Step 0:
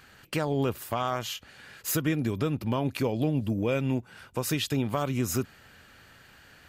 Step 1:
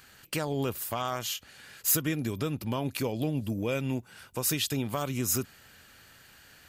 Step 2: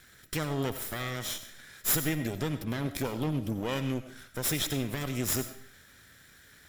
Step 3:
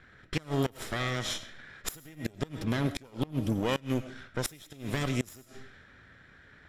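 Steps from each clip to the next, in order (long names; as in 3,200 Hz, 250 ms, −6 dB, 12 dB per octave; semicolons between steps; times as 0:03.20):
high-shelf EQ 4,400 Hz +11 dB; level −3.5 dB
lower of the sound and its delayed copy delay 0.54 ms; on a send at −10.5 dB: convolution reverb RT60 0.40 s, pre-delay 50 ms
low-pass that shuts in the quiet parts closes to 1,900 Hz, open at −26.5 dBFS; gate with flip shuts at −21 dBFS, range −24 dB; level +3.5 dB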